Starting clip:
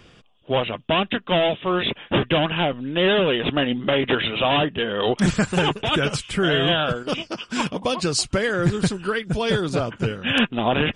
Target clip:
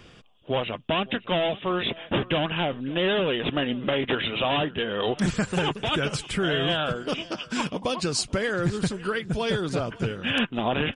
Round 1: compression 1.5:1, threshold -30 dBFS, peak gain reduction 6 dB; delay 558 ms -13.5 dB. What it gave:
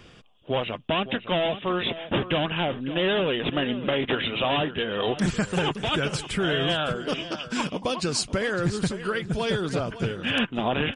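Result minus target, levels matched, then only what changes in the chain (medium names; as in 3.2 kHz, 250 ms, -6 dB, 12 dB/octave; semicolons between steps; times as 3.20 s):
echo-to-direct +7.5 dB
change: delay 558 ms -21 dB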